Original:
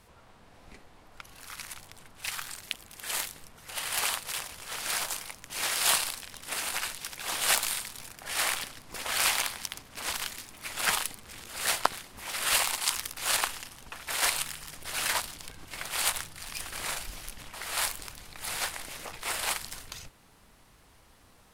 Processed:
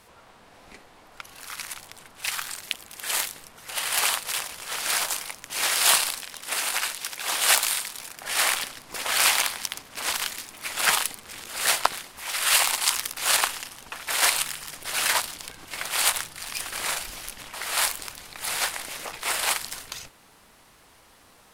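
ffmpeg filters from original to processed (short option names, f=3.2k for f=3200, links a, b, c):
-filter_complex "[0:a]asettb=1/sr,asplit=3[a][b][c];[a]atrim=end=6.234[d];[b]atrim=start=6.23:end=8.17,asetpts=PTS-STARTPTS,afade=t=in:d=0.004:c=qsin,afade=t=out:st=1.936:d=0.004:c=qsin,lowshelf=f=210:g=-6[e];[c]atrim=start=8.166[f];[d][e]acrossfade=d=0.004:c1=hsin:c2=qsin[g];[g][f]acrossfade=d=0.004:c1=qsin:c2=hsin,asettb=1/sr,asplit=3[h][i][j];[h]atrim=end=12.114[k];[i]atrim=start=12.11:end=12.61,asetpts=PTS-STARTPTS,afade=t=in:d=0.004:c=qsin,afade=t=out:st=0.496:d=0.004:c=qsin,equalizer=f=250:w=0.46:g=-6[l];[j]atrim=start=12.606[m];[k][l]acrossfade=d=0.004:c1=hsin:c2=qsin[n];[n][m]acrossfade=d=0.004:c1=qsin:c2=hsin,lowshelf=f=180:g=-11,acontrast=54"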